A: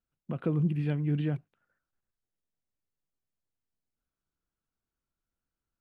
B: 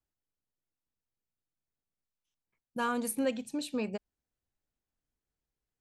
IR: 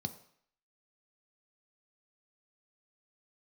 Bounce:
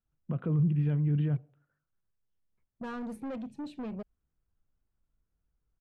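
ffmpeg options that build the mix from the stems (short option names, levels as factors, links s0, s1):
-filter_complex "[0:a]alimiter=limit=0.0708:level=0:latency=1:release=16,volume=1,asplit=3[s0][s1][s2];[s1]volume=0.178[s3];[1:a]aemphasis=mode=reproduction:type=bsi,asoftclip=type=tanh:threshold=0.0211,adelay=50,volume=0.891[s4];[s2]apad=whole_len=258097[s5];[s4][s5]sidechaincompress=threshold=0.00501:ratio=8:attack=16:release=974[s6];[2:a]atrim=start_sample=2205[s7];[s3][s7]afir=irnorm=-1:irlink=0[s8];[s0][s6][s8]amix=inputs=3:normalize=0,highshelf=f=2600:g=-11"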